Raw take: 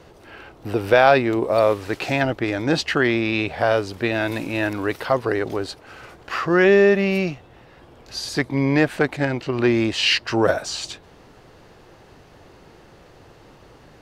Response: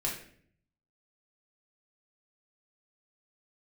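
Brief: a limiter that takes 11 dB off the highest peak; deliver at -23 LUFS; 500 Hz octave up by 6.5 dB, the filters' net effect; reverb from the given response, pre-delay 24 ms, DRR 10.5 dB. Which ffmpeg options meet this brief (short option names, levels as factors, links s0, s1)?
-filter_complex "[0:a]equalizer=f=500:t=o:g=8.5,alimiter=limit=0.398:level=0:latency=1,asplit=2[s0][s1];[1:a]atrim=start_sample=2205,adelay=24[s2];[s1][s2]afir=irnorm=-1:irlink=0,volume=0.178[s3];[s0][s3]amix=inputs=2:normalize=0,volume=0.631"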